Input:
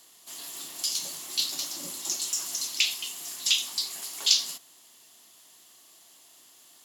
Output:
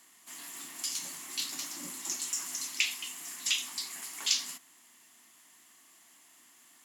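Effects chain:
graphic EQ with 10 bands 250 Hz +10 dB, 500 Hz −5 dB, 1,000 Hz +5 dB, 2,000 Hz +11 dB, 4,000 Hz −5 dB, 8,000 Hz +5 dB
level −7.5 dB

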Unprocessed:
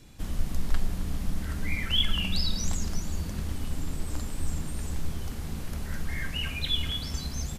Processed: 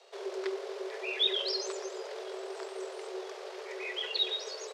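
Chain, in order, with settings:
frequency shifter +370 Hz
Chebyshev band-pass filter 790–4,900 Hz, order 2
tempo change 1.6×

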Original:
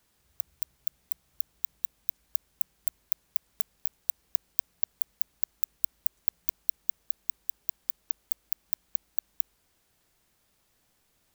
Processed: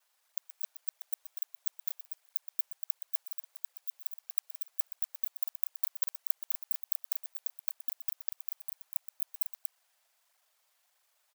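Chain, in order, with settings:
reversed piece by piece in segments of 41 ms
Butterworth high-pass 580 Hz 36 dB per octave
loudspeakers that aren't time-aligned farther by 42 metres −12 dB, 82 metres −6 dB
through-zero flanger with one copy inverted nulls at 1.5 Hz, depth 8 ms

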